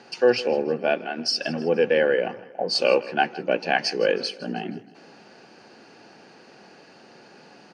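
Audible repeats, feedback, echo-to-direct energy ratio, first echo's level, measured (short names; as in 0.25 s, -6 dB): 3, 46%, -18.0 dB, -19.0 dB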